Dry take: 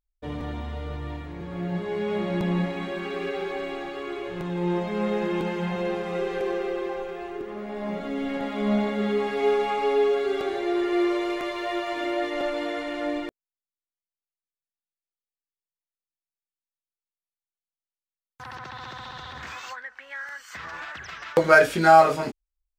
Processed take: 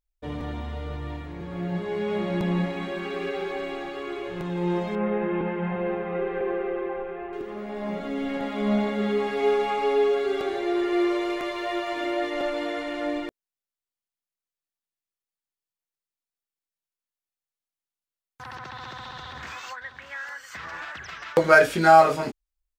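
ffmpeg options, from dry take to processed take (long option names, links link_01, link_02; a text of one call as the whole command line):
ffmpeg -i in.wav -filter_complex "[0:a]asettb=1/sr,asplit=3[link_01][link_02][link_03];[link_01]atrim=end=4.954[link_04];[link_02]atrim=start=4.95:end=7.33,asetpts=PTS-STARTPTS,afade=type=in:duration=0.004:curve=qsin,afade=type=out:start_time=2.376:duration=0.004:curve=qsin,lowpass=frequency=2400:width=0.5412,lowpass=frequency=2400:width=1.3066[link_05];[link_03]atrim=start=7.326[link_06];[link_04][link_05]acrossfade=duration=0.004:curve1=hsin:curve2=qsin[link_07];[link_07][link_06]acrossfade=duration=0.004:curve1=qsin:curve2=hsin,asplit=2[link_08][link_09];[link_09]afade=type=in:start_time=19.22:duration=0.01,afade=type=out:start_time=20.35:duration=0.01,aecho=0:1:590|1180:0.281838|0.0422757[link_10];[link_08][link_10]amix=inputs=2:normalize=0" out.wav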